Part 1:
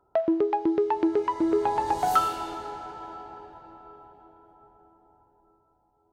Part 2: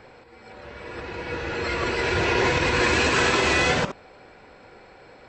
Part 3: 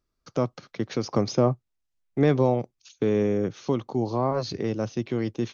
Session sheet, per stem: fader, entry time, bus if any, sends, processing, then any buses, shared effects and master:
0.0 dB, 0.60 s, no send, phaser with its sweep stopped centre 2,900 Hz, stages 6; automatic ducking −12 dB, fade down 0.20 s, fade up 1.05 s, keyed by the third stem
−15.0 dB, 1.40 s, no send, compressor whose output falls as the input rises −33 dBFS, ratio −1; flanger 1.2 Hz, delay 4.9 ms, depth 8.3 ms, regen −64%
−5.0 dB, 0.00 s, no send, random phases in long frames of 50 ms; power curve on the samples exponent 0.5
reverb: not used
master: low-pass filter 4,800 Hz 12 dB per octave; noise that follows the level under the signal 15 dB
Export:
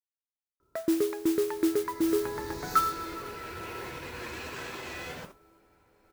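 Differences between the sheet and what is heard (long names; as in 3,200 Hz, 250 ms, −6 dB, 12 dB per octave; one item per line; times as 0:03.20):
stem 2: missing compressor whose output falls as the input rises −33 dBFS, ratio −1
stem 3: muted
master: missing low-pass filter 4,800 Hz 12 dB per octave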